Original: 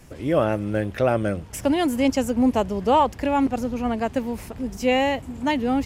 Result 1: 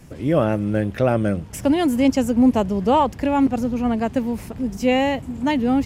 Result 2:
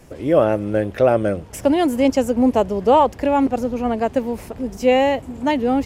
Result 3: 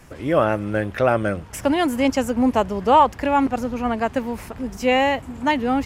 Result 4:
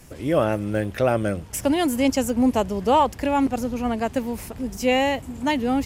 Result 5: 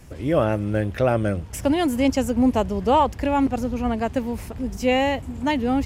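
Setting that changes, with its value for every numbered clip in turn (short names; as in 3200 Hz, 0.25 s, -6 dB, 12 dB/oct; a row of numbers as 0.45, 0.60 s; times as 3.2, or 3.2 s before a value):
bell, frequency: 170, 500, 1300, 14000, 65 Hz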